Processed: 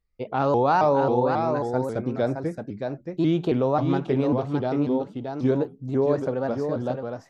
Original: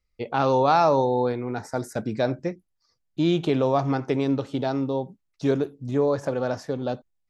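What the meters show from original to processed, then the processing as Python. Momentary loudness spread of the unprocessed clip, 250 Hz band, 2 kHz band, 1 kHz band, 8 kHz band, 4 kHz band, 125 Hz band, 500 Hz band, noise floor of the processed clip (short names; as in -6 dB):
11 LU, +1.0 dB, -1.0 dB, 0.0 dB, n/a, -6.0 dB, +1.0 dB, +0.5 dB, -51 dBFS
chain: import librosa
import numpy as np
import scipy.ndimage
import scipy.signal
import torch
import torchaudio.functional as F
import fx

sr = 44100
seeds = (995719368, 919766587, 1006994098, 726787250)

y = fx.high_shelf(x, sr, hz=2300.0, db=-10.0)
y = y + 10.0 ** (-5.5 / 20.0) * np.pad(y, (int(620 * sr / 1000.0), 0))[:len(y)]
y = fx.vibrato_shape(y, sr, shape='saw_up', rate_hz=3.7, depth_cents=160.0)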